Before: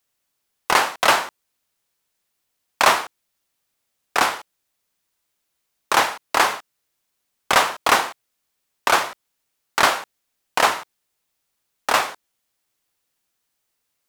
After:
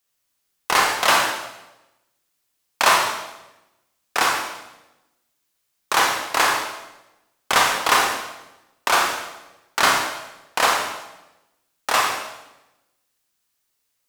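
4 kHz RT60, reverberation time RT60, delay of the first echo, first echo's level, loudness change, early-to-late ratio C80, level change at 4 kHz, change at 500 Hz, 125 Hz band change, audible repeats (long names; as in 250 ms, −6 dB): 0.90 s, 1.0 s, no echo audible, no echo audible, −0.5 dB, 5.5 dB, +1.5 dB, −1.5 dB, +0.5 dB, no echo audible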